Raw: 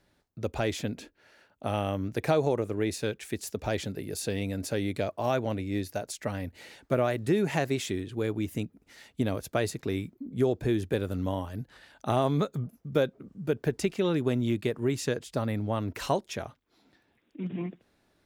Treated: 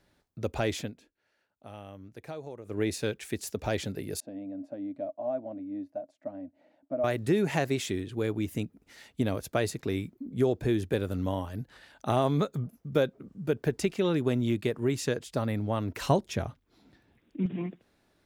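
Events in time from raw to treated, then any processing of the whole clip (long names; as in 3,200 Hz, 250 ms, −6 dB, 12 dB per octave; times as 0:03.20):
0:00.79–0:02.79: duck −15.5 dB, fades 0.15 s
0:04.20–0:07.04: pair of resonant band-passes 420 Hz, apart 1.1 octaves
0:16.08–0:17.46: low-shelf EQ 230 Hz +11.5 dB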